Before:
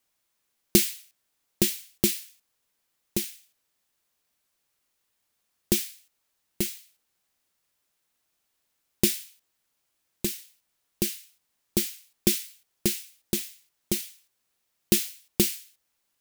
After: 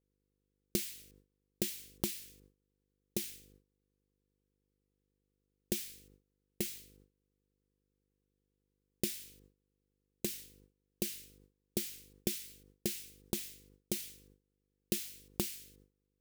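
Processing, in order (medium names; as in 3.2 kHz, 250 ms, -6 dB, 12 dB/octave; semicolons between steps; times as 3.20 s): mains buzz 50 Hz, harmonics 10, -60 dBFS -3 dB/octave; gate with hold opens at -49 dBFS; compression 4:1, threshold -30 dBFS, peak gain reduction 13.5 dB; trim -3 dB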